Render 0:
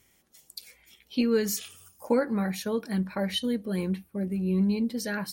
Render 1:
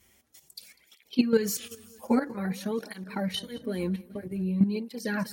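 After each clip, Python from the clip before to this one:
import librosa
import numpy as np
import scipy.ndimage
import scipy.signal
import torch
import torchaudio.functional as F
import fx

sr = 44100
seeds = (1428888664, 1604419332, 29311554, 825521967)

y = fx.echo_feedback(x, sr, ms=198, feedback_pct=45, wet_db=-19.0)
y = fx.level_steps(y, sr, step_db=11)
y = fx.flanger_cancel(y, sr, hz=0.51, depth_ms=7.5)
y = F.gain(torch.from_numpy(y), 6.0).numpy()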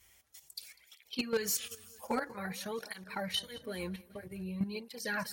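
y = fx.peak_eq(x, sr, hz=250.0, db=-14.0, octaves=1.8)
y = np.clip(y, -10.0 ** (-24.5 / 20.0), 10.0 ** (-24.5 / 20.0))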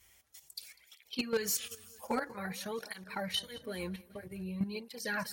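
y = x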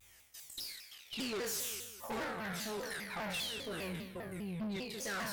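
y = fx.spec_trails(x, sr, decay_s=0.83)
y = fx.tube_stage(y, sr, drive_db=37.0, bias=0.35)
y = fx.vibrato_shape(y, sr, shape='saw_down', rate_hz=5.0, depth_cents=250.0)
y = F.gain(torch.from_numpy(y), 1.0).numpy()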